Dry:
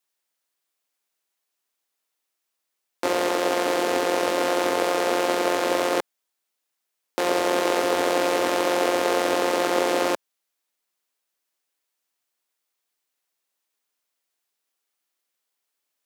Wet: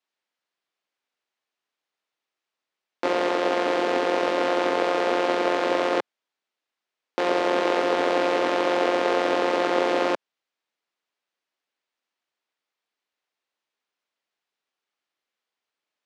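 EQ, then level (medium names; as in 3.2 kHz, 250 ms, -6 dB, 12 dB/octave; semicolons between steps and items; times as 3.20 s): band-pass 120–3900 Hz; 0.0 dB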